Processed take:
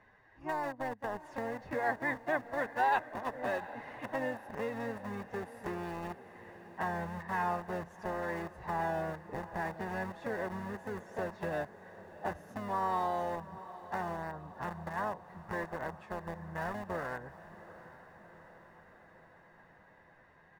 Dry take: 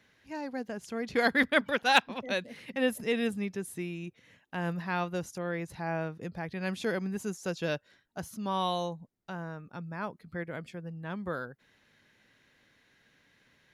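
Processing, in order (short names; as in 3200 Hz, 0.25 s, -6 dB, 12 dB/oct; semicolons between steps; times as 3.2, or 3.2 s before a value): tilt -2.5 dB/oct; time stretch by phase-locked vocoder 1.5×; in parallel at -4.5 dB: bit-crush 5-bit; on the sum: harmoniser -12 st -9 dB, +3 st -10 dB; compressor 4:1, threshold -35 dBFS, peak gain reduction 18 dB; band shelf 850 Hz +14 dB 2.8 oct; comb 1.1 ms, depth 46%; on a send: diffused feedback echo 0.764 s, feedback 63%, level -15.5 dB; on the sum: gain -9 dB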